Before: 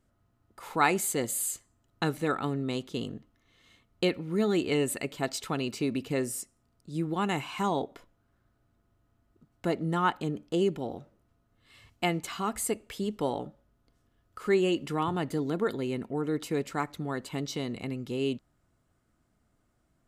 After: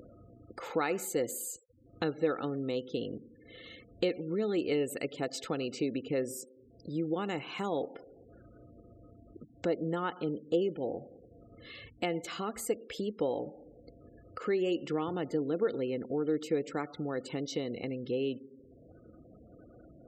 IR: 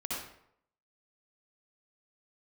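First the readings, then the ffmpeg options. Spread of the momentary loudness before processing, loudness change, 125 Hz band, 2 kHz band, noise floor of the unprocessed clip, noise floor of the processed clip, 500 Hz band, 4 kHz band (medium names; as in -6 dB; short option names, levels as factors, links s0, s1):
10 LU, -3.5 dB, -7.0 dB, -6.5 dB, -72 dBFS, -58 dBFS, -1.0 dB, -5.0 dB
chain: -filter_complex "[0:a]asplit=2[s0][s1];[1:a]atrim=start_sample=2205,adelay=14[s2];[s1][s2]afir=irnorm=-1:irlink=0,volume=0.0708[s3];[s0][s3]amix=inputs=2:normalize=0,acompressor=threshold=0.00631:ratio=2,highpass=42,acompressor=mode=upward:threshold=0.00562:ratio=2.5,equalizer=f=315:t=o:w=0.33:g=5,equalizer=f=500:t=o:w=0.33:g=11,equalizer=f=1000:t=o:w=0.33:g=-6,equalizer=f=10000:t=o:w=0.33:g=-11,afftfilt=real='re*gte(hypot(re,im),0.00224)':imag='im*gte(hypot(re,im),0.00224)':win_size=1024:overlap=0.75,lowshelf=f=170:g=-4.5,volume=1.68"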